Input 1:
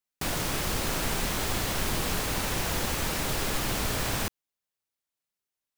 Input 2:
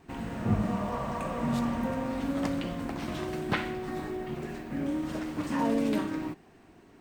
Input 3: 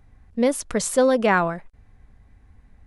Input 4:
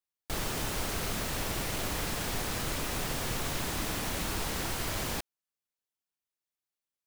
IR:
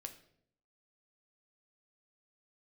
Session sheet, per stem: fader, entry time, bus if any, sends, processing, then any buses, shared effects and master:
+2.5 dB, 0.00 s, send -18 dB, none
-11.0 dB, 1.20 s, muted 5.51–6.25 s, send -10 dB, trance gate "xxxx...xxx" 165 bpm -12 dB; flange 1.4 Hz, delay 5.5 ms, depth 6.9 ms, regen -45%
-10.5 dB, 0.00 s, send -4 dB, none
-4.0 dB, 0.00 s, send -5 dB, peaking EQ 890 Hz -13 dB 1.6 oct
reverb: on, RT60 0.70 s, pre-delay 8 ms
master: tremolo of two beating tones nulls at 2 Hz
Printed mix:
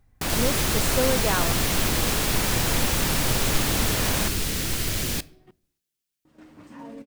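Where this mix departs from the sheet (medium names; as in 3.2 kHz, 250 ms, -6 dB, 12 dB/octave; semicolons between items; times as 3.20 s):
stem 4 -4.0 dB -> +6.5 dB; master: missing tremolo of two beating tones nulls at 2 Hz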